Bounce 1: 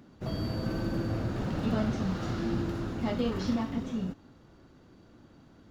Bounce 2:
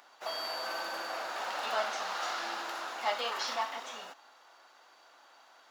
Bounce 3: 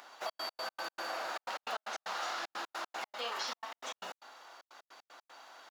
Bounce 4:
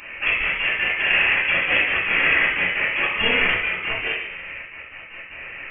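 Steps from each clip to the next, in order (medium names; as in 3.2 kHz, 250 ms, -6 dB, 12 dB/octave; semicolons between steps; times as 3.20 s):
Chebyshev high-pass 770 Hz, order 3; trim +8 dB
compression 3:1, threshold -42 dBFS, peak gain reduction 12 dB; trance gate "xxx.x.x.x.x" 153 bpm -60 dB; trim +5 dB
in parallel at -9.5 dB: bit crusher 5-bit; on the sum: reverberation RT60 0.85 s, pre-delay 4 ms, DRR -12.5 dB; frequency inversion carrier 3.3 kHz; trim +4 dB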